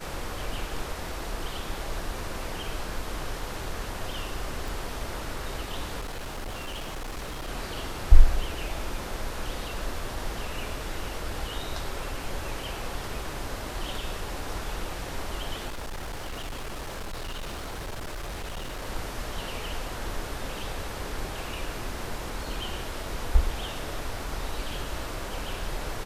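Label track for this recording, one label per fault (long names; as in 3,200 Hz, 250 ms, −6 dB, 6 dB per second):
4.680000	4.680000	click
6.000000	7.490000	clipping −31.5 dBFS
15.670000	18.870000	clipping −31.5 dBFS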